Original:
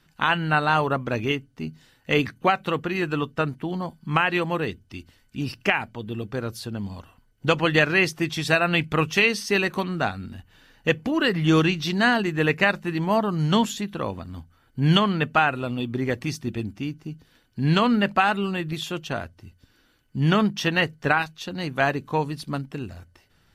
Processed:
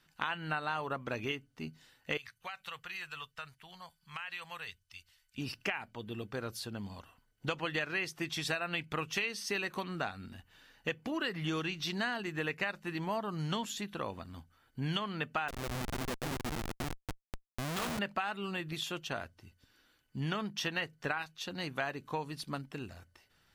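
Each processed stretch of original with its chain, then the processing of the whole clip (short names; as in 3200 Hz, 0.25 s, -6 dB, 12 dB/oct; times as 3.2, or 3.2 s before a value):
2.17–5.38 passive tone stack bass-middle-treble 10-0-10 + compressor 5:1, threshold -32 dBFS
15.48–17.99 reverse delay 0.233 s, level -4.5 dB + Schmitt trigger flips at -24.5 dBFS
whole clip: low shelf 470 Hz -7.5 dB; compressor 4:1, threshold -28 dBFS; gain -4.5 dB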